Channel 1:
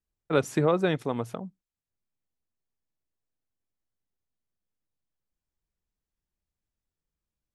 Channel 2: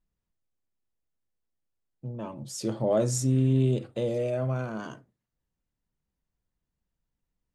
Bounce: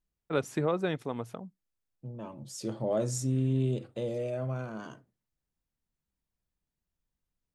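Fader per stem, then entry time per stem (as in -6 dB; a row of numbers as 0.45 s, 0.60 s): -5.5 dB, -5.0 dB; 0.00 s, 0.00 s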